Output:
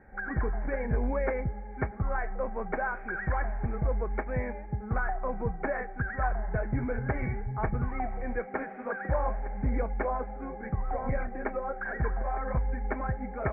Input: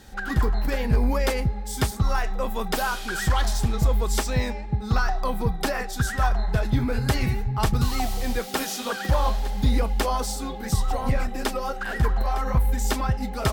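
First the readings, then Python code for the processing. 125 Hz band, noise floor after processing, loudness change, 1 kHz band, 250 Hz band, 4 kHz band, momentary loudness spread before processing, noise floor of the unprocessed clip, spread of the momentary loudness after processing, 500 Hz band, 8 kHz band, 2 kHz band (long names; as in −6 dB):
−8.5 dB, −41 dBFS, −7.0 dB, −6.0 dB, −7.0 dB, below −40 dB, 5 LU, −33 dBFS, 5 LU, −3.5 dB, below −40 dB, −5.0 dB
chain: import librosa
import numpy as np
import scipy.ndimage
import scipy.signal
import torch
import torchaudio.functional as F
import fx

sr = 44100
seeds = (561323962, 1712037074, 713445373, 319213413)

y = scipy.signal.sosfilt(scipy.signal.cheby1(6, 6, 2300.0, 'lowpass', fs=sr, output='sos'), x)
y = y * 10.0 ** (-2.5 / 20.0)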